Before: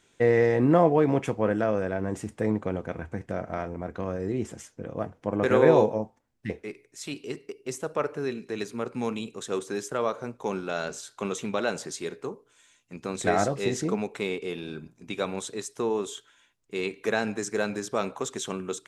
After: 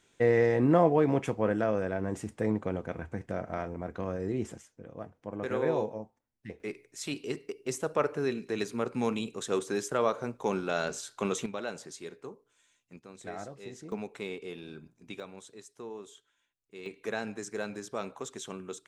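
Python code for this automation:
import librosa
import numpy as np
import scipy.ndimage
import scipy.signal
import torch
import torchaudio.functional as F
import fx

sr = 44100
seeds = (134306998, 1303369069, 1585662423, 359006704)

y = fx.gain(x, sr, db=fx.steps((0.0, -3.0), (4.58, -10.5), (6.6, 0.0), (11.46, -9.0), (12.99, -17.0), (13.92, -8.0), (15.2, -15.0), (16.86, -8.0)))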